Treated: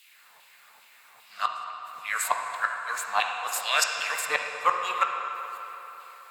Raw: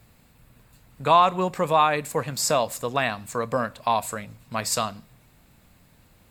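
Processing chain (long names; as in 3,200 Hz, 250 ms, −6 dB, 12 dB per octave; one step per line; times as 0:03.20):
played backwards from end to start
auto-filter high-pass saw down 2.5 Hz 780–3,000 Hz
gate with flip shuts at −14 dBFS, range −40 dB
on a send: convolution reverb RT60 3.7 s, pre-delay 3 ms, DRR 1.5 dB
on the sum: level +3.5 dB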